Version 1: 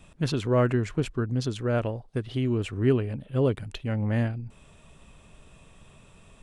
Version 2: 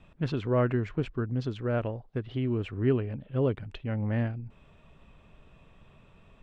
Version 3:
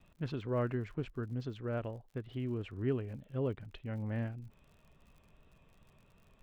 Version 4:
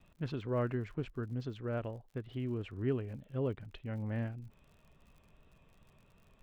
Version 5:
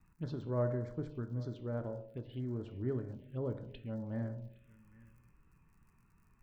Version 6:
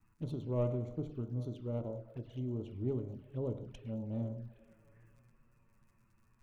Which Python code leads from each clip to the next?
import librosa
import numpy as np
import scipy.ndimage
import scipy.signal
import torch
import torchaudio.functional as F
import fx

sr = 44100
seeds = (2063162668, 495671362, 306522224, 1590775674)

y1 = scipy.signal.sosfilt(scipy.signal.butter(2, 3000.0, 'lowpass', fs=sr, output='sos'), x)
y1 = y1 * librosa.db_to_amplitude(-3.0)
y2 = fx.vibrato(y1, sr, rate_hz=2.8, depth_cents=32.0)
y2 = fx.dmg_crackle(y2, sr, seeds[0], per_s=65.0, level_db=-46.0)
y2 = y2 * librosa.db_to_amplitude(-8.0)
y3 = y2
y4 = y3 + 10.0 ** (-21.5 / 20.0) * np.pad(y3, (int(815 * sr / 1000.0), 0))[:len(y3)]
y4 = fx.rev_fdn(y4, sr, rt60_s=0.97, lf_ratio=0.8, hf_ratio=0.55, size_ms=10.0, drr_db=6.5)
y4 = fx.env_phaser(y4, sr, low_hz=550.0, high_hz=2700.0, full_db=-33.0)
y4 = y4 * librosa.db_to_amplitude(-2.5)
y5 = fx.tracing_dist(y4, sr, depth_ms=0.12)
y5 = fx.echo_tape(y5, sr, ms=103, feedback_pct=86, wet_db=-17.0, lp_hz=2600.0, drive_db=28.0, wow_cents=6)
y5 = fx.env_flanger(y5, sr, rest_ms=10.6, full_db=-37.0)
y5 = y5 * librosa.db_to_amplitude(1.0)